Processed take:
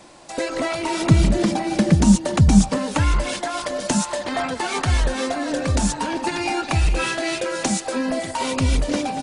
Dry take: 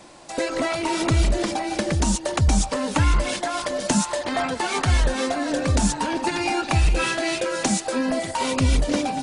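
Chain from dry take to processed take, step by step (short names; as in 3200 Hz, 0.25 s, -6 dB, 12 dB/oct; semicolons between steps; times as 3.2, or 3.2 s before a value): 1.09–2.78 bell 180 Hz +13.5 dB 1.2 oct; speakerphone echo 0.23 s, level -16 dB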